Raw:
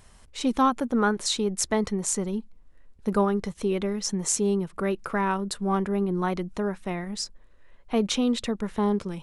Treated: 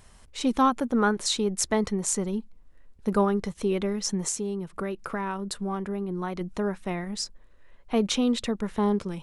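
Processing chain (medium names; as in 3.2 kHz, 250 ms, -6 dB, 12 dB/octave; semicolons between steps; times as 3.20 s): 4.28–6.41 s: compression 4:1, threshold -28 dBFS, peak gain reduction 7 dB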